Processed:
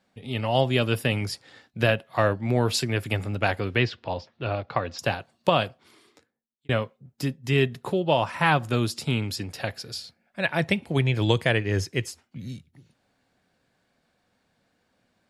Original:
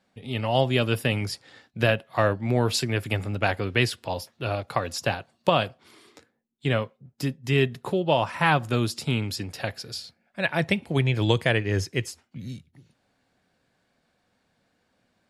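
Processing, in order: 3.77–4.99 Bessel low-pass 3400 Hz, order 8; 5.61–6.69 fade out

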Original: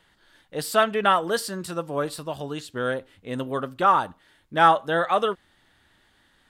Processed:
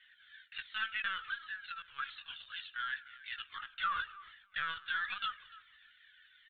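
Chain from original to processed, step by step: de-esser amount 85%; elliptic high-pass 1500 Hz, stop band 60 dB; in parallel at -1.5 dB: compressor 6:1, threshold -41 dBFS, peak gain reduction 14 dB; on the sum: soft clip -22.5 dBFS, distortion -19 dB; feedback echo 0.295 s, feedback 22%, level -21 dB; on a send at -19 dB: reverb, pre-delay 55 ms; on the sum: LPC vocoder at 8 kHz pitch kept; cascading flanger falling 1.4 Hz; gain +1 dB

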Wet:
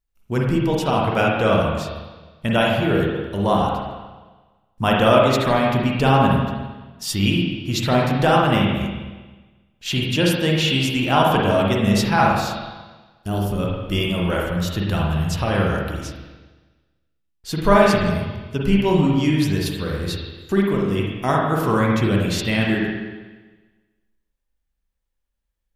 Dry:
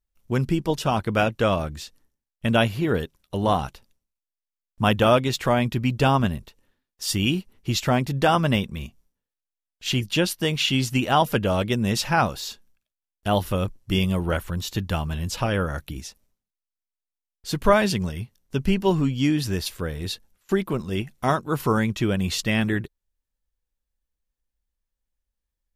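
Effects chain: spectral gain 13.14–13.59, 450–4200 Hz -10 dB; spring tank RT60 1.3 s, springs 40/45/51 ms, chirp 35 ms, DRR -2.5 dB

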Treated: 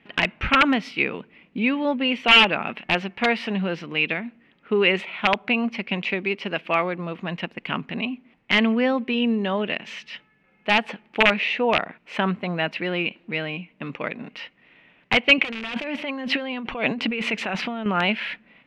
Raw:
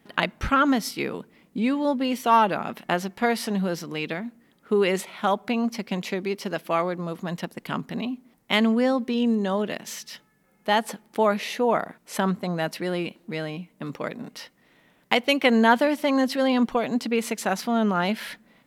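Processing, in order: wrapped overs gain 11.5 dB; 15.38–17.86 negative-ratio compressor -29 dBFS, ratio -1; synth low-pass 2600 Hz, resonance Q 4.2

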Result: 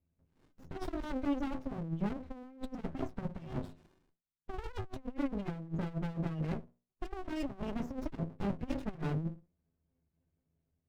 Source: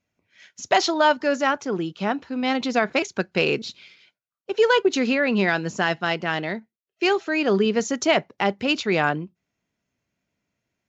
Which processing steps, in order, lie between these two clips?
tilt -4 dB/oct; notches 60/120/180/240/300/360/420/480 Hz; metallic resonator 77 Hz, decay 0.33 s, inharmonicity 0.03; negative-ratio compressor -30 dBFS, ratio -0.5; spectral gate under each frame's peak -30 dB strong; running maximum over 65 samples; gain -4 dB

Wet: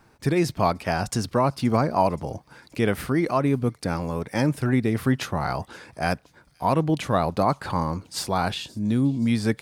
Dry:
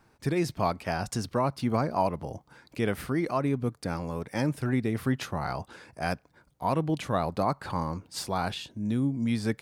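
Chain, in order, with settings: thin delay 0.525 s, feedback 52%, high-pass 3800 Hz, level -21 dB; gain +5.5 dB

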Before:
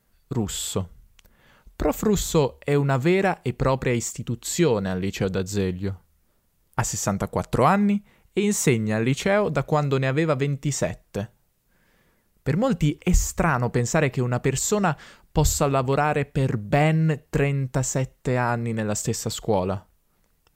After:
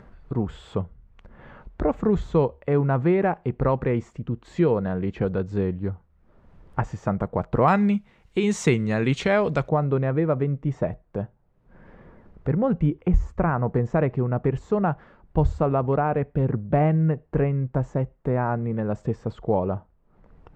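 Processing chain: LPF 1400 Hz 12 dB/oct, from 7.68 s 4600 Hz, from 9.69 s 1100 Hz; upward compressor, threshold -33 dBFS

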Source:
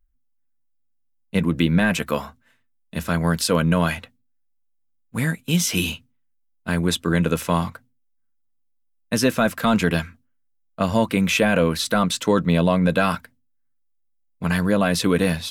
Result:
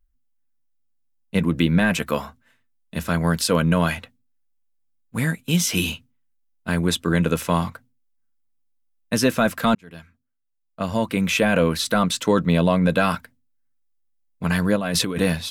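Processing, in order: 9.75–11.57 fade in; 14.76–15.2 negative-ratio compressor -24 dBFS, ratio -1

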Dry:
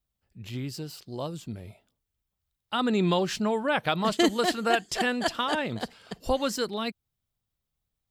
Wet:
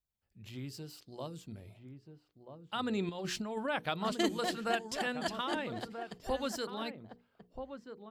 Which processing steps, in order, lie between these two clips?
notches 60/120/180/240/300/360/420/480 Hz; 3.09–3.68 negative-ratio compressor -28 dBFS, ratio -0.5; outdoor echo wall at 220 m, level -8 dB; gain -8.5 dB

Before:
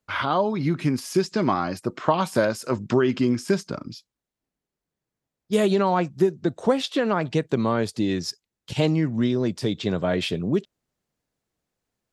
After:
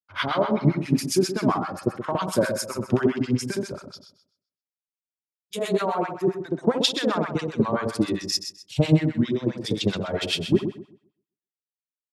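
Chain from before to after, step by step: reverb removal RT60 1.5 s; compressor 4:1, threshold -21 dBFS, peak gain reduction 6.5 dB; on a send: flutter echo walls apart 11 m, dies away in 1.1 s; on the sum: harmonic tremolo 7.5 Hz, depth 100%, crossover 860 Hz; three-band expander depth 100%; gain +5 dB

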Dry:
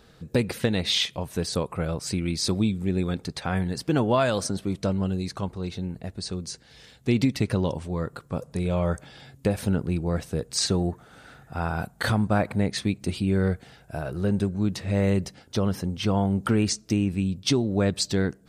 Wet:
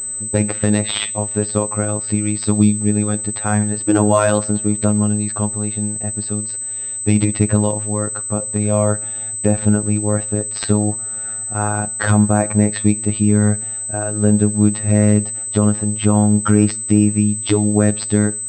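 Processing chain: high shelf 2900 Hz -10 dB; robotiser 105 Hz; two-slope reverb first 0.43 s, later 4.1 s, from -28 dB, DRR 16.5 dB; maximiser +11.5 dB; pulse-width modulation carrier 8100 Hz

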